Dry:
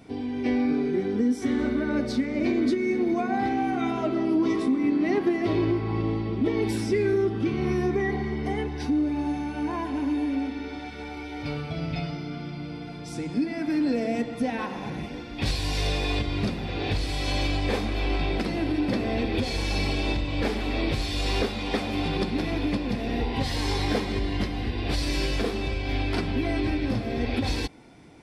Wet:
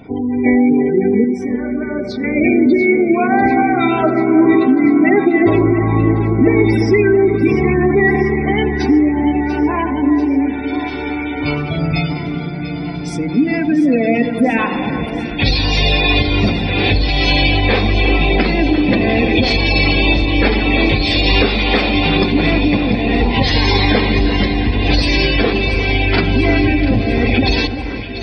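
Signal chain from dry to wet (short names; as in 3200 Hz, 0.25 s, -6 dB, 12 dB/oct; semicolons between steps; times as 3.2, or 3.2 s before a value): spectral gate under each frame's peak -25 dB strong; de-hum 347.7 Hz, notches 5; dynamic EQ 2600 Hz, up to +7 dB, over -46 dBFS, Q 0.77; 1.24–2.24 resonator 600 Hz, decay 0.25 s, harmonics odd, mix 70%; echo with dull and thin repeats by turns 0.346 s, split 1600 Hz, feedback 82%, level -10 dB; on a send at -20 dB: reverb RT60 0.40 s, pre-delay 74 ms; on the sum: maximiser +12.5 dB; gain -1 dB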